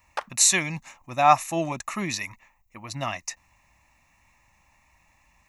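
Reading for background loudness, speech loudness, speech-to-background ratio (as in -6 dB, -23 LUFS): -36.5 LUFS, -23.5 LUFS, 13.0 dB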